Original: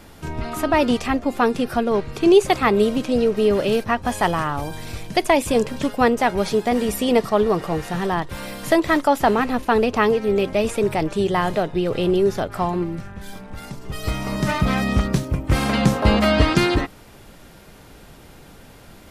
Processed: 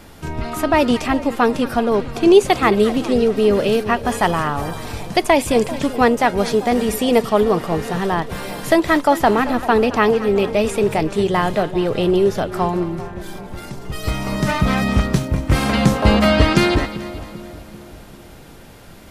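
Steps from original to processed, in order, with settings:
echo with a time of its own for lows and highs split 980 Hz, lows 391 ms, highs 220 ms, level −14.5 dB
level +2.5 dB

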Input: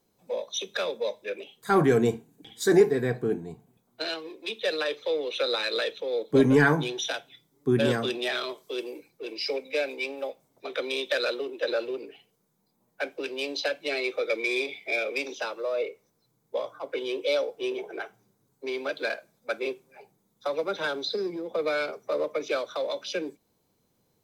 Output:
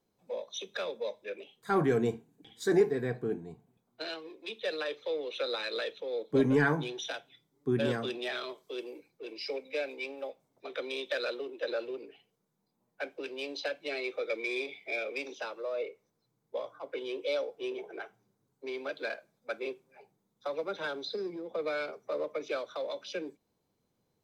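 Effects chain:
high-shelf EQ 6,600 Hz −8 dB
level −6 dB

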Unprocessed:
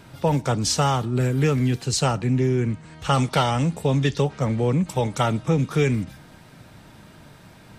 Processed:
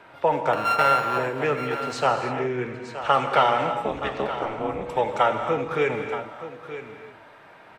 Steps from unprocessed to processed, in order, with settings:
0:00.53–0:01.18: samples sorted by size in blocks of 32 samples
three-way crossover with the lows and the highs turned down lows −22 dB, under 410 Hz, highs −21 dB, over 2,700 Hz
0:03.85–0:04.82: amplitude modulation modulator 220 Hz, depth 100%
single-tap delay 923 ms −12.5 dB
reverb whose tail is shaped and stops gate 340 ms flat, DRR 5.5 dB
level +4 dB

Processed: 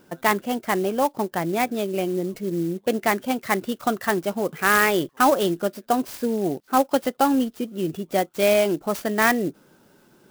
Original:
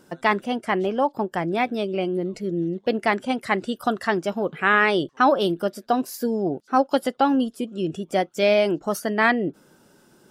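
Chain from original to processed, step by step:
converter with an unsteady clock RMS 0.035 ms

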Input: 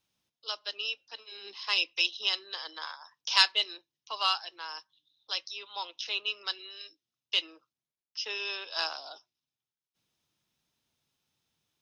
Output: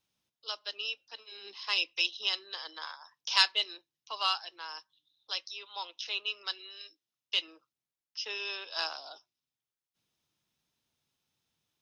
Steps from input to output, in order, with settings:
0:05.37–0:07.48: low-shelf EQ 190 Hz −7.5 dB
level −2 dB

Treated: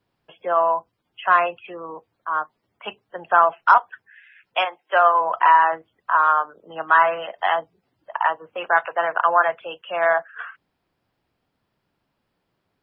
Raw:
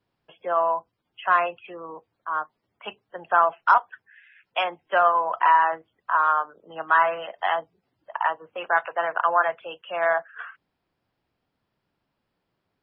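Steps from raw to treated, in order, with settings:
0:04.64–0:05.20: high-pass filter 740 Hz → 270 Hz 12 dB per octave
level +3.5 dB

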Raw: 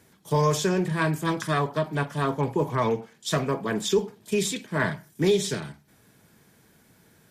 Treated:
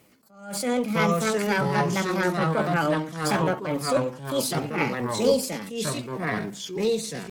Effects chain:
delay with pitch and tempo change per echo 580 ms, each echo −3 semitones, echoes 2
pitch shifter +5 semitones
level that may rise only so fast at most 100 dB per second

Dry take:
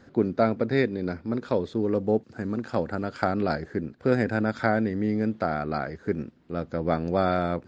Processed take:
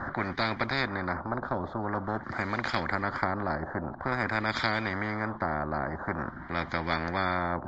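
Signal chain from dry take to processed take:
phaser with its sweep stopped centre 1,100 Hz, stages 4
auto-filter low-pass sine 0.48 Hz 650–2,500 Hz
every bin compressed towards the loudest bin 4 to 1

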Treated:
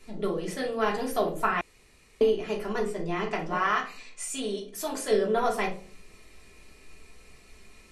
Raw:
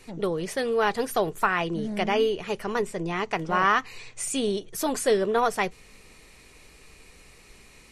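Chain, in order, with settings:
0:03.52–0:05.11: low-shelf EQ 370 Hz −10 dB
convolution reverb RT60 0.45 s, pre-delay 3 ms, DRR −1.5 dB
0:01.61–0:02.21: fill with room tone
level −7 dB

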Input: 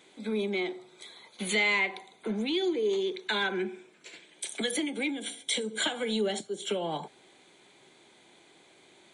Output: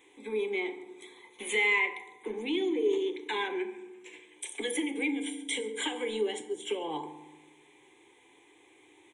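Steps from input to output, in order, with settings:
phaser with its sweep stopped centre 940 Hz, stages 8
single-tap delay 139 ms −23 dB
feedback delay network reverb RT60 1.1 s, low-frequency decay 1.55×, high-frequency decay 0.45×, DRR 8.5 dB

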